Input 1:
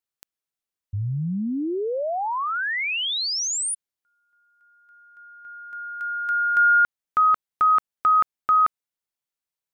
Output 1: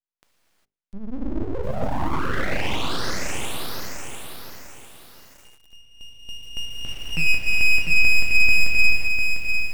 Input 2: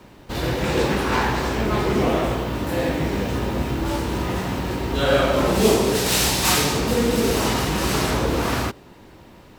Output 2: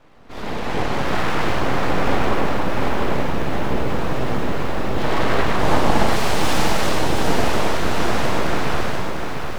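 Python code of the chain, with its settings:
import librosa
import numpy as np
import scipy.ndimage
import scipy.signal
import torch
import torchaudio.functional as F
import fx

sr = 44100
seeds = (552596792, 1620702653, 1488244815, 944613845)

y = fx.lowpass(x, sr, hz=1600.0, slope=6)
y = fx.hum_notches(y, sr, base_hz=50, count=7)
y = fx.rev_gated(y, sr, seeds[0], gate_ms=430, shape='flat', drr_db=-6.0)
y = np.abs(y)
y = fx.echo_crushed(y, sr, ms=699, feedback_pct=35, bits=7, wet_db=-5)
y = y * 10.0 ** (-3.0 / 20.0)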